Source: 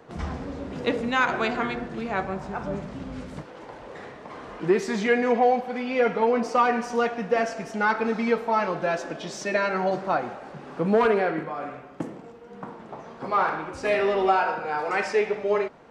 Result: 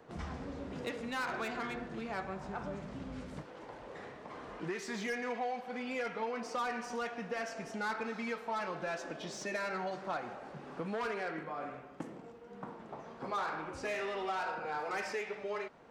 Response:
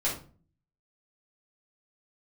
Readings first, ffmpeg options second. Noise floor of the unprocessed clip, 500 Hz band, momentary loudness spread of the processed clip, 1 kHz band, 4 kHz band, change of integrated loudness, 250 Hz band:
-44 dBFS, -15.0 dB, 11 LU, -13.0 dB, -9.0 dB, -14.0 dB, -13.5 dB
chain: -filter_complex "[0:a]acrossover=split=1000[a][b];[a]acompressor=threshold=-31dB:ratio=6[c];[b]asoftclip=type=tanh:threshold=-29dB[d];[c][d]amix=inputs=2:normalize=0,volume=-7dB"

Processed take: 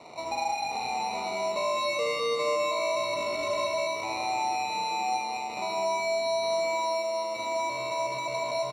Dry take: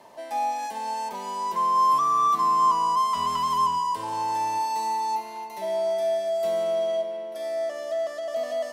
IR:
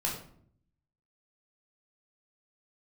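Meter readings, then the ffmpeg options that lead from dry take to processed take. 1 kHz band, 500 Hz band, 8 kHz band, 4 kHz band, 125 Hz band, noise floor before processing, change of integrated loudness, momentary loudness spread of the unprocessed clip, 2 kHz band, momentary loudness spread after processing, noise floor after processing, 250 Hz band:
-6.5 dB, -1.0 dB, +1.5 dB, +4.5 dB, -2.5 dB, -38 dBFS, -4.0 dB, 11 LU, +9.5 dB, 4 LU, -34 dBFS, -1.5 dB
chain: -filter_complex "[0:a]acrusher=samples=27:mix=1:aa=0.000001,acompressor=threshold=-37dB:ratio=3,highpass=110,lowpass=3.5k,highshelf=f=2.5k:g=11,bandreject=f=2.6k:w=6.9,asplit=2[a][b];[b]aecho=0:1:75.8|204.1:0.562|0.708[c];[a][c]amix=inputs=2:normalize=0,volume=2.5dB"

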